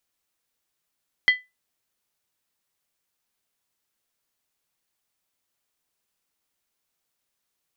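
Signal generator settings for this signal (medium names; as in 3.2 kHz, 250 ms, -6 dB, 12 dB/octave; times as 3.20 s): skin hit, lowest mode 2 kHz, decay 0.21 s, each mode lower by 9.5 dB, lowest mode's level -10 dB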